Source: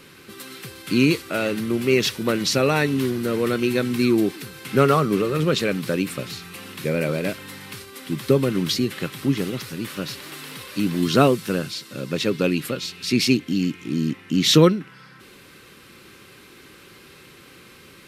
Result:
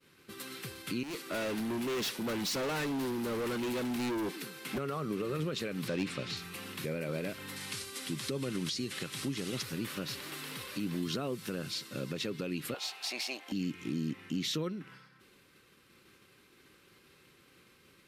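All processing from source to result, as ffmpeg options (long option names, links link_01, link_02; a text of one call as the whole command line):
ffmpeg -i in.wav -filter_complex "[0:a]asettb=1/sr,asplit=3[link_01][link_02][link_03];[link_01]atrim=end=1.034[link_04];[link_02]atrim=start=1.03:end=4.78,asetpts=PTS-STARTPTS,afade=type=in:duration=0.004:curve=qsin,afade=type=out:start_time=3.746:duration=0.004:curve=qsin,highpass=frequency=170:width=0.5412,highpass=frequency=170:width=1.3066,volume=26.5dB,asoftclip=hard,volume=-26.5dB[link_05];[link_03]atrim=start=4.776[link_06];[link_04][link_05]acrossfade=duration=0.004:curve1=hsin:curve2=qsin[link_07];[link_07][link_06]acrossfade=duration=0.004:curve1=qsin:curve2=hsin,asettb=1/sr,asplit=3[link_08][link_09][link_10];[link_08]atrim=end=5.884[link_11];[link_09]atrim=start=5.88:end=6.37,asetpts=PTS-STARTPTS,afade=type=in:duration=0.004:curve=qsin,afade=type=out:start_time=0.486:duration=0.004:curve=qsin,lowpass=4500,highshelf=frequency=3500:gain=7.5,asoftclip=type=hard:threshold=-16.5dB[link_12];[link_10]atrim=start=6.366[link_13];[link_11][link_12]acrossfade=duration=0.004:curve1=hsin:curve2=qsin[link_14];[link_14][link_13]acrossfade=duration=0.004:curve1=qsin:curve2=hsin,asettb=1/sr,asplit=3[link_15][link_16][link_17];[link_15]atrim=end=7.564[link_18];[link_16]atrim=start=7.56:end=9.63,asetpts=PTS-STARTPTS,afade=type=in:duration=0.004:curve=qsin,afade=type=out:start_time=2.066:duration=0.004:curve=qsin,lowpass=frequency=11000:width=0.5412,lowpass=frequency=11000:width=1.3066,aemphasis=mode=production:type=75fm,acrossover=split=7900[link_19][link_20];[link_20]acompressor=threshold=-45dB:ratio=4:attack=1:release=60[link_21];[link_19][link_21]amix=inputs=2:normalize=0[link_22];[link_17]atrim=start=9.626[link_23];[link_18][link_22]acrossfade=duration=0.004:curve1=hsin:curve2=qsin[link_24];[link_24][link_23]acrossfade=duration=0.004:curve1=qsin:curve2=hsin,asettb=1/sr,asplit=3[link_25][link_26][link_27];[link_25]atrim=end=12.744[link_28];[link_26]atrim=start=12.74:end=13.52,asetpts=PTS-STARTPTS,afade=type=in:duration=0.004:curve=qsin,afade=type=out:start_time=0.776:duration=0.004:curve=qsin,aeval=exprs='if(lt(val(0),0),0.708*val(0),val(0))':channel_layout=same,highpass=frequency=750:width_type=q:width=7.4[link_29];[link_27]atrim=start=13.516[link_30];[link_28][link_29]acrossfade=duration=0.004:curve1=hsin:curve2=qsin[link_31];[link_31][link_30]acrossfade=duration=0.004:curve1=qsin:curve2=hsin,agate=range=-33dB:threshold=-39dB:ratio=3:detection=peak,acompressor=threshold=-24dB:ratio=2.5,alimiter=limit=-20dB:level=0:latency=1:release=128,volume=-5.5dB" out.wav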